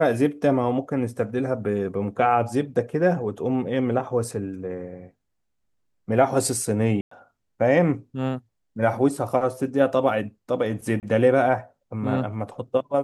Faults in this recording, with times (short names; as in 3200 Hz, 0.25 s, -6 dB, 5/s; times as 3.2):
7.01–7.11 gap 0.104 s
11–11.03 gap 28 ms